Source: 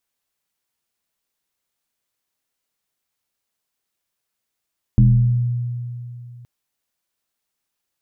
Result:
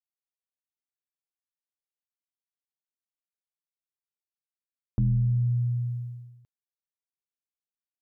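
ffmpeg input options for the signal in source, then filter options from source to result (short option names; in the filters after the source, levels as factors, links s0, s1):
-f lavfi -i "aevalsrc='0.422*pow(10,-3*t/2.86)*sin(2*PI*121*t+0.97*pow(10,-3*t/1.28)*sin(2*PI*0.68*121*t))':d=1.47:s=44100"
-af "agate=range=0.0224:threshold=0.0282:ratio=3:detection=peak,areverse,acompressor=threshold=0.0708:ratio=5,areverse"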